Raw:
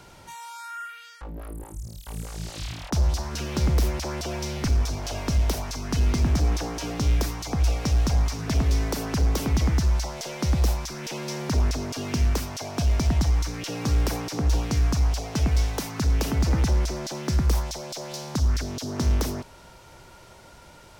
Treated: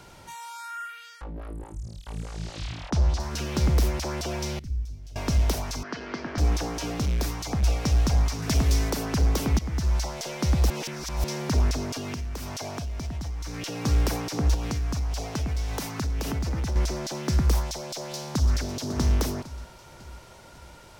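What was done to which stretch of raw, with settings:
1.24–3.20 s: distance through air 75 m
4.59–5.16 s: amplifier tone stack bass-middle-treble 10-0-1
5.83–6.38 s: cabinet simulation 360–4400 Hz, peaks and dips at 790 Hz -4 dB, 1.6 kHz +5 dB, 2.6 kHz -5 dB, 3.7 kHz -8 dB
6.89–7.63 s: hard clipper -22 dBFS
8.42–8.90 s: treble shelf 4.7 kHz +8 dB
9.59–10.01 s: fade in, from -14.5 dB
10.70–11.24 s: reverse
11.97–13.85 s: compression 12:1, threshold -29 dBFS
14.54–16.76 s: compression 5:1, threshold -25 dBFS
17.92–18.54 s: echo throw 550 ms, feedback 50%, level -11 dB

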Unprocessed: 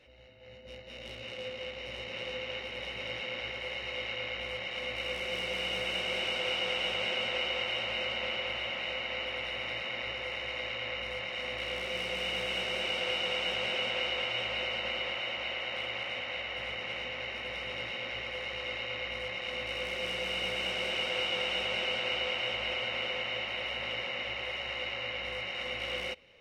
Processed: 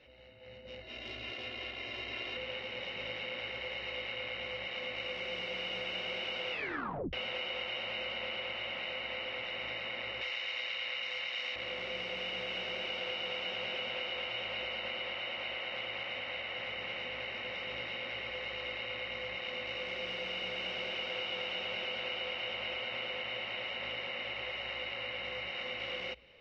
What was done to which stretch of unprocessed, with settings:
0.81–2.37 s: comb 2.9 ms, depth 76%
6.51 s: tape stop 0.62 s
10.21–11.56 s: tilt EQ +4 dB/octave
whole clip: low-pass 5.1 kHz 24 dB/octave; hum notches 60/120 Hz; compression 2.5:1, threshold -37 dBFS

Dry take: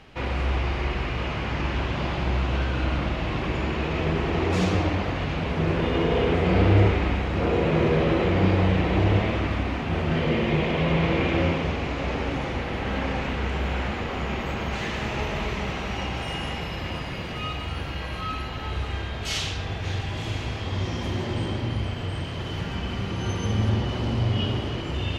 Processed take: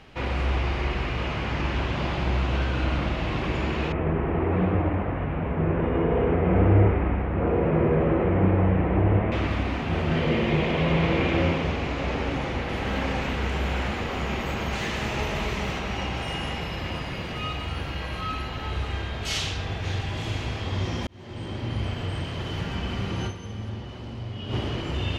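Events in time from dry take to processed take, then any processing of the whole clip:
3.92–9.32 s: Bessel low-pass 1.5 kHz, order 6
12.69–15.79 s: treble shelf 6.8 kHz +8 dB
21.07–21.87 s: fade in linear
23.26–24.54 s: dip -11 dB, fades 0.37 s exponential

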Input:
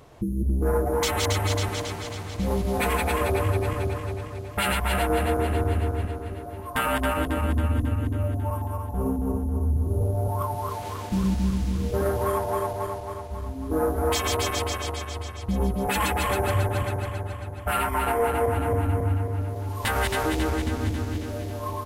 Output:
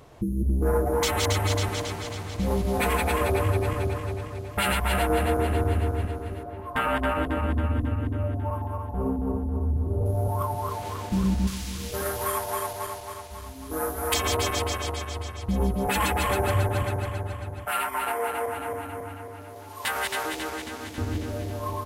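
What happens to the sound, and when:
6.43–10.06 s: tone controls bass -2 dB, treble -12 dB
11.47–14.14 s: tilt shelf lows -9 dB, about 1.2 kHz
17.65–20.98 s: high-pass 880 Hz 6 dB/octave

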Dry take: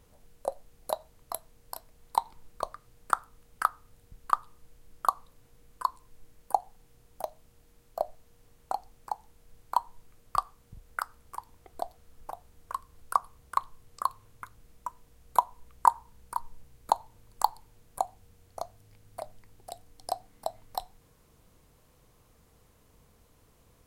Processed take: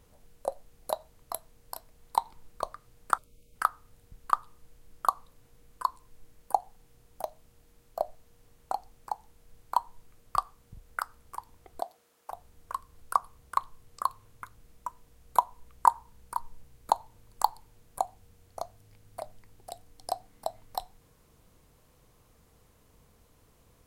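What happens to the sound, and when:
3.18–3.55 s: time-frequency box 650–2100 Hz -22 dB
11.80–12.30 s: high-pass 220 Hz -> 530 Hz

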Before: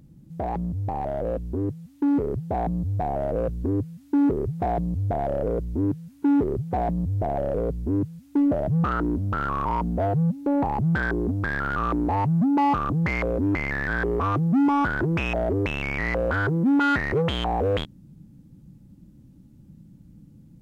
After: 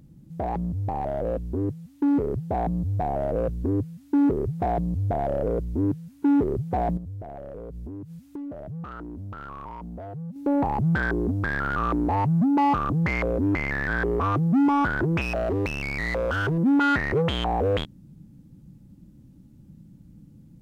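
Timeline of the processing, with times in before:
6.97–10.36 s: compression 10:1, threshold -33 dBFS
15.21–16.58 s: overload inside the chain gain 20.5 dB

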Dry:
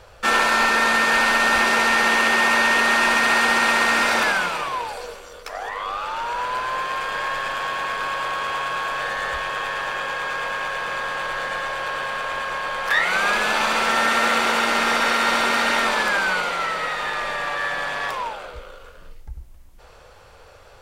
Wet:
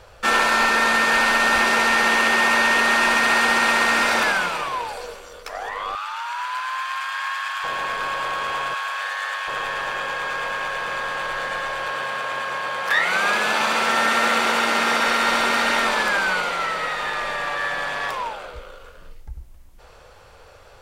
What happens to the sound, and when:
5.95–7.64 s: inverse Chebyshev high-pass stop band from 210 Hz, stop band 70 dB
8.74–9.48 s: high-pass 910 Hz
11.92–15.06 s: high-pass 75 Hz

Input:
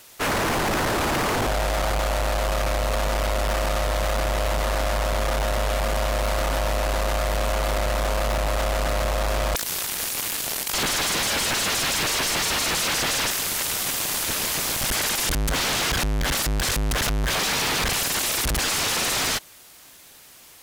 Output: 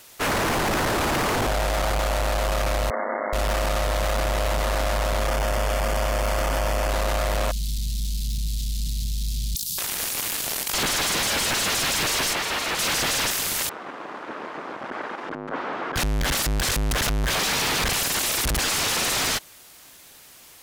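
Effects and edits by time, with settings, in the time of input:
2.90–3.33 s: brick-wall FIR band-pass 200–2200 Hz
5.28–6.90 s: band-stop 3.9 kHz, Q 5.9
7.51–9.78 s: Chebyshev band-stop 190–3900 Hz, order 3
12.33–12.79 s: tone controls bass -7 dB, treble -8 dB
13.69–15.96 s: Chebyshev band-pass 280–1300 Hz

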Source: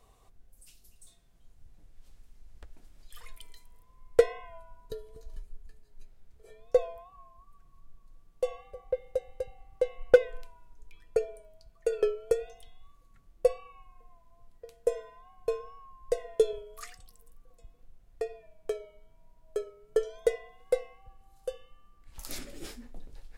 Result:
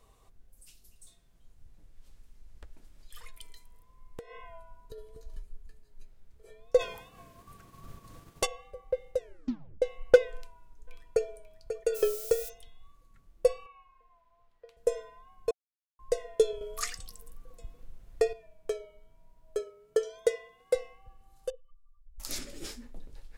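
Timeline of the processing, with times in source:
3.27–4.98 s: compression 16:1, threshold -39 dBFS
6.79–8.45 s: spectral peaks clipped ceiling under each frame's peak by 26 dB
9.16 s: tape stop 0.66 s
10.33–11.29 s: echo throw 540 ms, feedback 10%, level -9 dB
11.94–12.48 s: added noise violet -42 dBFS
13.66–14.77 s: three-band isolator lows -13 dB, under 510 Hz, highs -15 dB, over 4.3 kHz
15.51–15.99 s: mute
16.61–18.33 s: gain +8 dB
19.59–20.75 s: high-pass 140 Hz 6 dB/octave
21.50–22.20 s: spectral contrast enhancement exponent 2.6
whole clip: dynamic bell 5.9 kHz, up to +6 dB, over -57 dBFS, Q 0.93; band-stop 730 Hz, Q 12

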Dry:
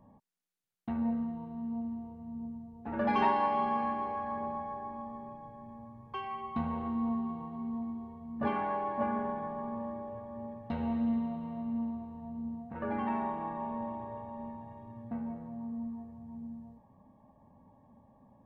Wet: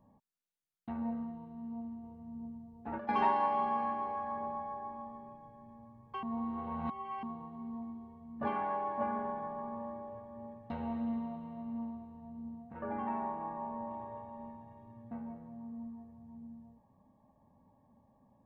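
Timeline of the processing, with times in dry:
2.03–3.09 s: compressor with a negative ratio -36 dBFS
6.23–7.23 s: reverse
12.81–13.91 s: treble shelf 3 kHz -11.5 dB
whole clip: dynamic bell 900 Hz, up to +5 dB, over -45 dBFS, Q 0.79; trim -6 dB

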